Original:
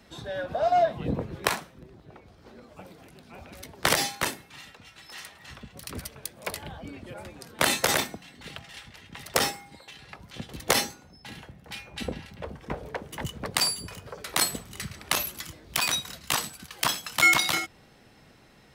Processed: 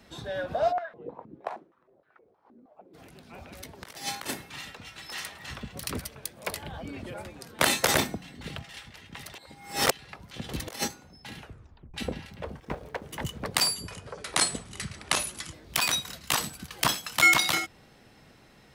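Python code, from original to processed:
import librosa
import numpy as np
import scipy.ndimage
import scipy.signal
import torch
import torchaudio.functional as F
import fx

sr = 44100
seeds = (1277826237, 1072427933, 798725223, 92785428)

y = fx.filter_held_bandpass(x, sr, hz=6.4, low_hz=270.0, high_hz=1500.0, at=(0.71, 2.93), fade=0.02)
y = fx.over_compress(y, sr, threshold_db=-33.0, ratio=-0.5, at=(3.81, 5.96), fade=0.02)
y = fx.env_flatten(y, sr, amount_pct=70, at=(6.73, 7.22))
y = fx.low_shelf(y, sr, hz=410.0, db=8.0, at=(7.95, 8.63))
y = fx.over_compress(y, sr, threshold_db=-31.0, ratio=-0.5, at=(10.44, 10.88))
y = fx.law_mismatch(y, sr, coded='A', at=(12.6, 13.03))
y = fx.resample_bad(y, sr, factor=2, down='none', up='filtered', at=(13.73, 15.54))
y = fx.low_shelf(y, sr, hz=410.0, db=6.0, at=(16.4, 16.94))
y = fx.edit(y, sr, fx.reverse_span(start_s=9.35, length_s=0.56),
    fx.tape_stop(start_s=11.4, length_s=0.54), tone=tone)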